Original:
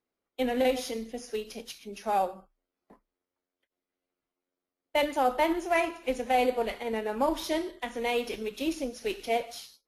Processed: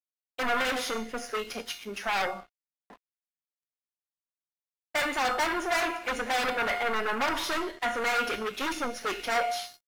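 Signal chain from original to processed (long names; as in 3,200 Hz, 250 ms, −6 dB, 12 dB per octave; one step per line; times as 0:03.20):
in parallel at −9.5 dB: sine wavefolder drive 18 dB, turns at −13.5 dBFS
on the sum: parametric band 1,500 Hz +11.5 dB 1.8 octaves
tuned comb filter 710 Hz, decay 0.46 s, mix 80%
dead-zone distortion −55 dBFS
level +3 dB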